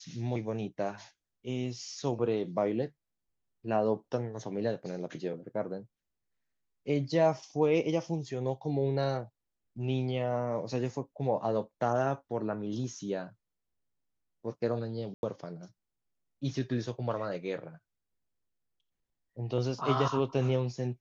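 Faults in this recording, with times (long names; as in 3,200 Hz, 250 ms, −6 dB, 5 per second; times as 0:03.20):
0:15.14–0:15.23: drop-out 91 ms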